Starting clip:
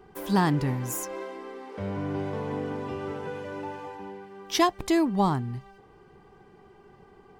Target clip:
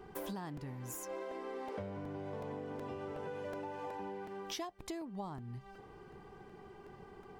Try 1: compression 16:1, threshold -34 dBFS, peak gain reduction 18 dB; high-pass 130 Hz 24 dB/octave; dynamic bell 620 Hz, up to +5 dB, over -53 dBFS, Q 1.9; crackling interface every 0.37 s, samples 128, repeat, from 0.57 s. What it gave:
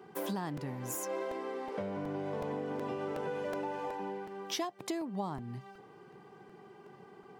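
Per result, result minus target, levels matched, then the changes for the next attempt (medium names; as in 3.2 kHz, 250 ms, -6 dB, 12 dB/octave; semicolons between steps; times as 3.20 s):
compression: peak gain reduction -6 dB; 125 Hz band -2.5 dB
change: compression 16:1, threshold -40.5 dBFS, peak gain reduction 24.5 dB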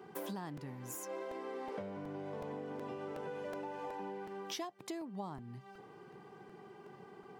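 125 Hz band -2.5 dB
remove: high-pass 130 Hz 24 dB/octave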